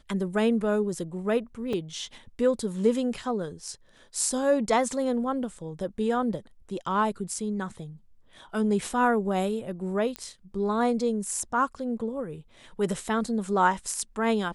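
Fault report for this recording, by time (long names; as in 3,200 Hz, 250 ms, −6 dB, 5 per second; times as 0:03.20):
0:01.73: drop-out 3.9 ms
0:10.16: click −18 dBFS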